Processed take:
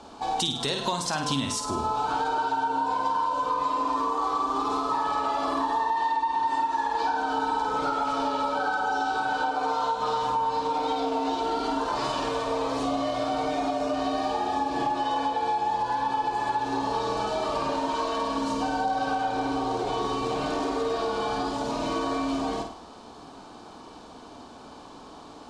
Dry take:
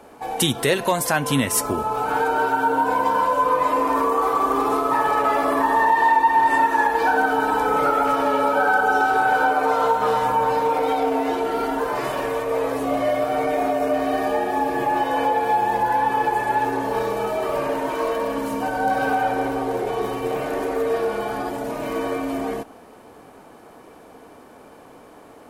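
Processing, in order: ten-band EQ 125 Hz -7 dB, 500 Hz -9 dB, 1000 Hz +3 dB, 2000 Hz -12 dB, 4000 Hz +9 dB; flutter echo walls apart 8.7 m, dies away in 0.46 s; compressor, threshold -27 dBFS, peak gain reduction 13.5 dB; LPF 7500 Hz 24 dB/oct; bell 110 Hz +2.5 dB 1.5 oct; gain +3 dB

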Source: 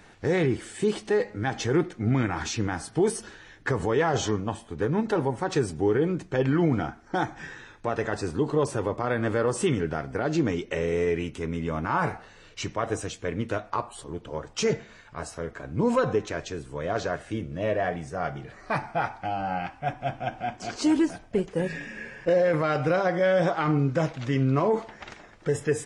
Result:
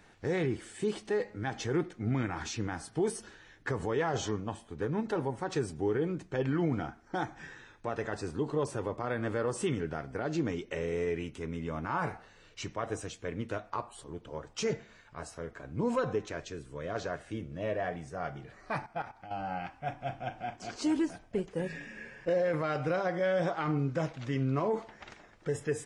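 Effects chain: 16.44–16.95 bell 810 Hz -11.5 dB 0.25 oct; 18.86–19.31 level quantiser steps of 13 dB; 19.84–20.56 doubler 39 ms -11.5 dB; gain -7 dB

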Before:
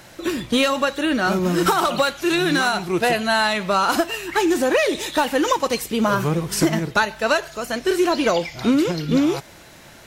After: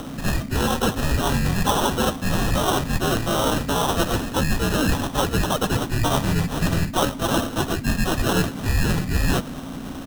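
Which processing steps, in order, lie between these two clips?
reverse; compressor 12:1, threshold -27 dBFS, peak gain reduction 14.5 dB; reverse; hum 60 Hz, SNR 13 dB; harmoniser -3 st -9 dB, +4 st -6 dB, +7 st -3 dB; sample-rate reducer 2500 Hz, jitter 0%; frequency shift -330 Hz; gain +6.5 dB

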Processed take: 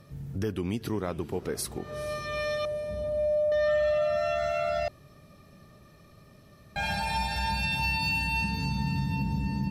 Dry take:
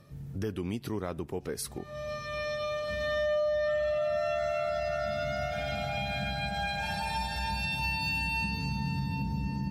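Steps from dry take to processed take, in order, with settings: 2.65–3.52 Chebyshev low-pass 960 Hz, order 10; diffused feedback echo 0.459 s, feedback 54%, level -16 dB; 4.88–6.76 room tone; gain +3 dB

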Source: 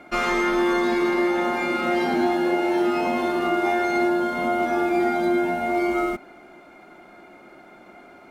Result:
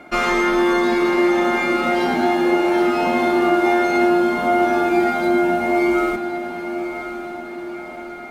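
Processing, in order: diffused feedback echo 1.067 s, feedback 57%, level -10 dB; 4.87–5.28 crackle 94/s -35 dBFS; gain +4 dB

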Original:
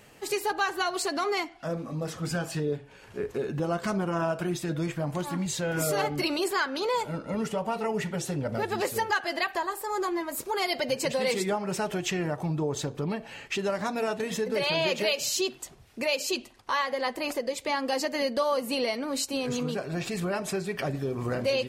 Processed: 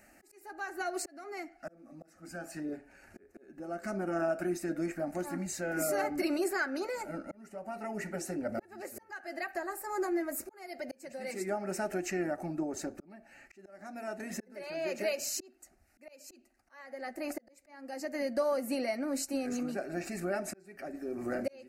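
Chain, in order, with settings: dynamic EQ 420 Hz, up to +6 dB, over -42 dBFS, Q 1.8; auto swell 0.76 s; fixed phaser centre 680 Hz, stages 8; gain -3 dB

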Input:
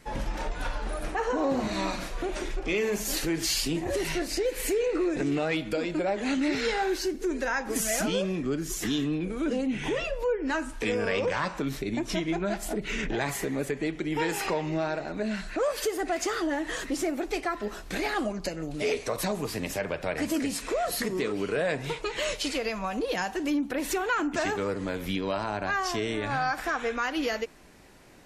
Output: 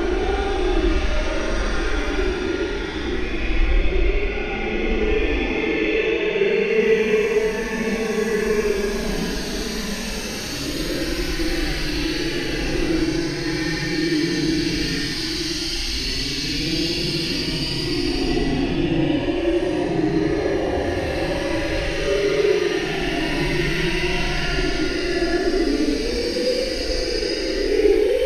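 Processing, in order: limiter -25.5 dBFS, peak gain reduction 9.5 dB; polynomial smoothing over 15 samples; non-linear reverb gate 0.21 s rising, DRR -7 dB; Paulstretch 13×, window 0.05 s, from 2.43; gain +4.5 dB

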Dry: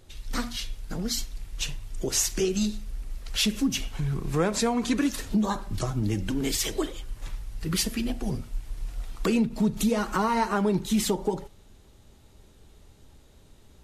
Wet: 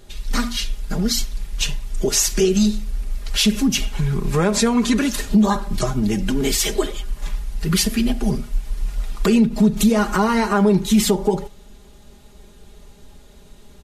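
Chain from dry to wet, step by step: comb 4.9 ms, depth 65%; in parallel at +2 dB: limiter -16.5 dBFS, peak gain reduction 8 dB

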